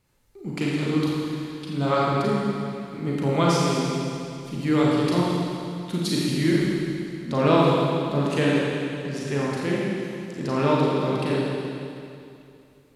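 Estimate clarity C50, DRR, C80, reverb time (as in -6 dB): -3.5 dB, -5.5 dB, -1.0 dB, 2.6 s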